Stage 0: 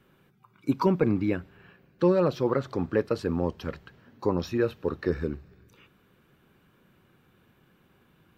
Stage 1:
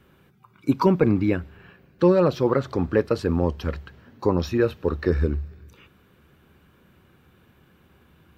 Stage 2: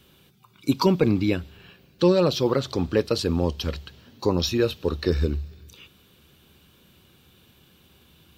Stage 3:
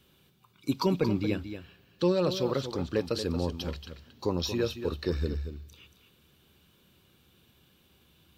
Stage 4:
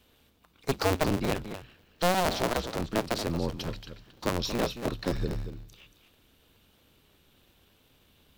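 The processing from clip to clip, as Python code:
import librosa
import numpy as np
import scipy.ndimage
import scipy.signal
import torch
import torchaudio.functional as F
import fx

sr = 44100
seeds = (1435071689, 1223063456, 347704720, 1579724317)

y1 = fx.peak_eq(x, sr, hz=73.0, db=12.5, octaves=0.36)
y1 = F.gain(torch.from_numpy(y1), 4.5).numpy()
y2 = fx.high_shelf_res(y1, sr, hz=2500.0, db=10.5, q=1.5)
y2 = F.gain(torch.from_numpy(y2), -1.0).numpy()
y3 = y2 + 10.0 ** (-10.0 / 20.0) * np.pad(y2, (int(230 * sr / 1000.0), 0))[:len(y2)]
y3 = F.gain(torch.from_numpy(y3), -7.0).numpy()
y4 = fx.cycle_switch(y3, sr, every=2, mode='inverted')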